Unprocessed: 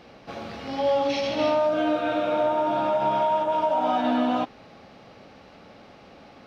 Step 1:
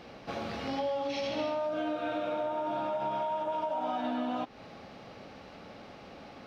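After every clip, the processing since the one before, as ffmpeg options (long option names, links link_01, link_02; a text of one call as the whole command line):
ffmpeg -i in.wav -af "acompressor=threshold=-31dB:ratio=5" out.wav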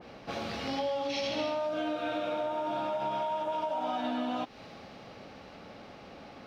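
ffmpeg -i in.wav -af "adynamicequalizer=threshold=0.00355:dfrequency=2300:dqfactor=0.7:tfrequency=2300:tqfactor=0.7:attack=5:release=100:ratio=0.375:range=2.5:mode=boostabove:tftype=highshelf" out.wav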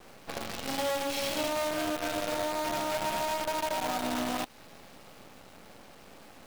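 ffmpeg -i in.wav -af "acrusher=bits=6:dc=4:mix=0:aa=0.000001" out.wav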